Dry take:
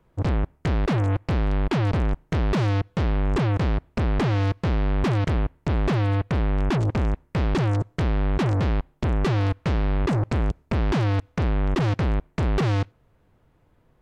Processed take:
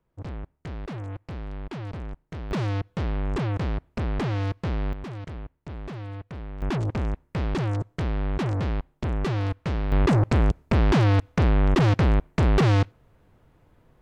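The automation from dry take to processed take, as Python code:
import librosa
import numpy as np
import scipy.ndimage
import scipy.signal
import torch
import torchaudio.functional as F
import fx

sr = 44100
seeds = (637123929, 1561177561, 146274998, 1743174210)

y = fx.gain(x, sr, db=fx.steps((0.0, -12.5), (2.51, -4.5), (4.93, -14.0), (6.62, -4.0), (9.92, 3.0)))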